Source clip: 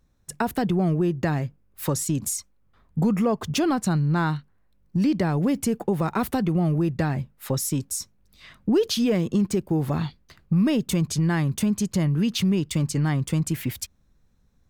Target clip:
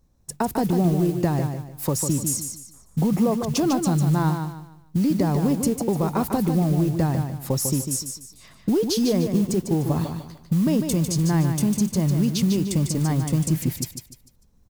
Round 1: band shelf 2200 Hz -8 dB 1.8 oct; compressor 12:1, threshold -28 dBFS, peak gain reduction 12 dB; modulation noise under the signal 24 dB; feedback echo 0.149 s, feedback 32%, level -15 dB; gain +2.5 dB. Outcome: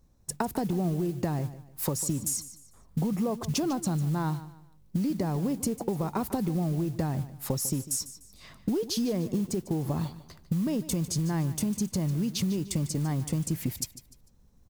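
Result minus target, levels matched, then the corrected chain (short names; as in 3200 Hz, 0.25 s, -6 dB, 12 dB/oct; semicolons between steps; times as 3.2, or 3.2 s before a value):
compressor: peak gain reduction +8 dB; echo-to-direct -8.5 dB
band shelf 2200 Hz -8 dB 1.8 oct; compressor 12:1, threshold -19.5 dBFS, peak gain reduction 4.5 dB; modulation noise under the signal 24 dB; feedback echo 0.149 s, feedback 32%, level -6.5 dB; gain +2.5 dB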